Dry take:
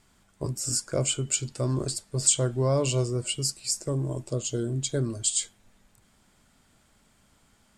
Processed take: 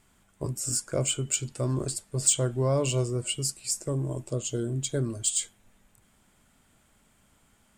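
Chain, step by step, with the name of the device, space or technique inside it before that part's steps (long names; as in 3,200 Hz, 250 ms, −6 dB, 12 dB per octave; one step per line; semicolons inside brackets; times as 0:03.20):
exciter from parts (in parallel at −5 dB: high-pass filter 4,300 Hz 12 dB per octave + soft clipping −22 dBFS, distortion −9 dB + high-pass filter 2,700 Hz 24 dB per octave)
on the sum: level −1 dB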